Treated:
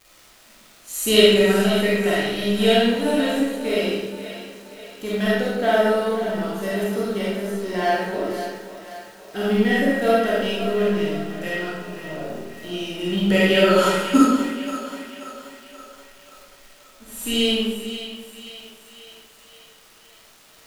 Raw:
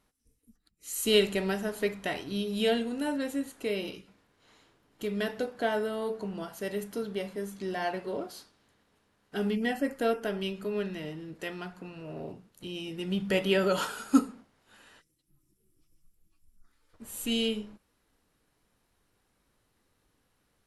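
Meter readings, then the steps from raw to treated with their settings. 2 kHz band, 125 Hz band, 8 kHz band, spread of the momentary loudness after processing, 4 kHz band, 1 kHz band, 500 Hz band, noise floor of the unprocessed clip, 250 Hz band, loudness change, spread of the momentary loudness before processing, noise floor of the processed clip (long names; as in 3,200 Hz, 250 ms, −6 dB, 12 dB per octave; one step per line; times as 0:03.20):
+12.0 dB, +11.0 dB, +9.0 dB, 20 LU, +11.5 dB, +12.0 dB, +11.0 dB, −74 dBFS, +10.5 dB, +10.5 dB, 16 LU, −51 dBFS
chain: mu-law and A-law mismatch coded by A
on a send: echo with a time of its own for lows and highs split 480 Hz, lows 262 ms, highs 530 ms, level −11 dB
on the sum: surface crackle 330 per second −44 dBFS
comb and all-pass reverb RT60 0.91 s, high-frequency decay 0.85×, pre-delay 5 ms, DRR −7 dB
level +4 dB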